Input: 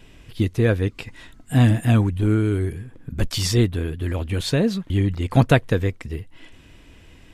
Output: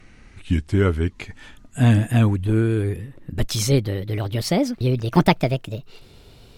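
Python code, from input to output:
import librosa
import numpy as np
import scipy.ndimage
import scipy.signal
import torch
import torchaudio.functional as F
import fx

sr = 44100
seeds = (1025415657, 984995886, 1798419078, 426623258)

y = fx.speed_glide(x, sr, from_pct=76, to_pct=147)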